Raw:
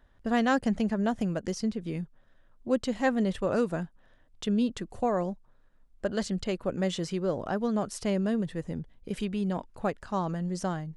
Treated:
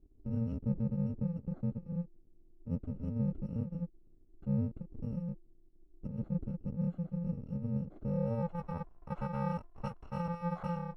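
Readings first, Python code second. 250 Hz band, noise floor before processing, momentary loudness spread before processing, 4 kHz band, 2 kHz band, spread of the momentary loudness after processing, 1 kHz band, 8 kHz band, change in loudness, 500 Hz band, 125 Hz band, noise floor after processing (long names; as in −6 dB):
−7.5 dB, −61 dBFS, 10 LU, below −25 dB, below −15 dB, 9 LU, −10.5 dB, below −30 dB, −7.5 dB, −13.0 dB, +1.0 dB, −61 dBFS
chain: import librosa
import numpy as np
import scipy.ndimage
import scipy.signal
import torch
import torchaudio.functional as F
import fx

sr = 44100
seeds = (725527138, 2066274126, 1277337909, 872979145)

y = fx.bit_reversed(x, sr, seeds[0], block=128)
y = fx.filter_sweep_lowpass(y, sr, from_hz=330.0, to_hz=1000.0, start_s=7.96, end_s=8.62, q=2.2)
y = fx.notch(y, sr, hz=4800.0, q=18.0)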